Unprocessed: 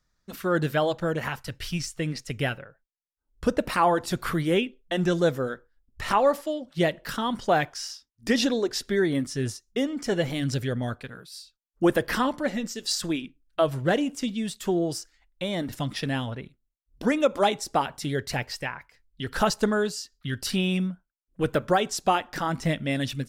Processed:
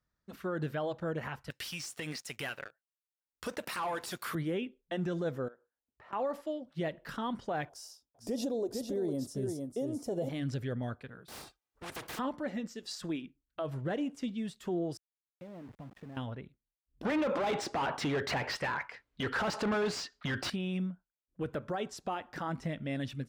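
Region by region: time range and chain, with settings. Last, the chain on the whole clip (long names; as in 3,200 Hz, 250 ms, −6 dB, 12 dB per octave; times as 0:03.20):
0:01.50–0:04.35: spectral tilt +4.5 dB per octave + leveller curve on the samples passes 3 + downward compressor 5 to 1, threshold −26 dBFS
0:05.48–0:06.13: resonant band-pass 710 Hz, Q 0.99 + downward compressor 2.5 to 1, threshold −48 dBFS
0:07.69–0:10.29: drawn EQ curve 250 Hz 0 dB, 650 Hz +7 dB, 1,800 Hz −17 dB, 11,000 Hz +12 dB + single-tap delay 455 ms −7.5 dB
0:11.28–0:12.19: lower of the sound and its delayed copy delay 2.5 ms + downward compressor, threshold −22 dBFS + every bin compressed towards the loudest bin 4 to 1
0:14.97–0:16.17: low-pass filter 1,100 Hz + downward compressor 3 to 1, threshold −39 dBFS + centre clipping without the shift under −45 dBFS
0:17.05–0:20.50: high-shelf EQ 12,000 Hz −11.5 dB + mid-hump overdrive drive 31 dB, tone 3,000 Hz, clips at −10 dBFS
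whole clip: high-pass filter 45 Hz; high-shelf EQ 3,500 Hz −11.5 dB; brickwall limiter −19.5 dBFS; level −7 dB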